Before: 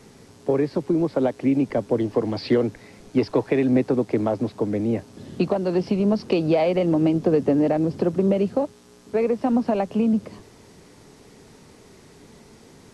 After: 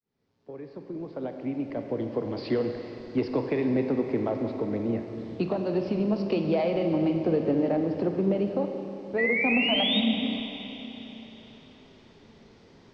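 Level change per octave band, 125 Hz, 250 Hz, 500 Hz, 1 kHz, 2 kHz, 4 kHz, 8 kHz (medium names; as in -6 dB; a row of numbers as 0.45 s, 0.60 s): -6.0 dB, -5.5 dB, -6.0 dB, -5.5 dB, +6.5 dB, +10.0 dB, no reading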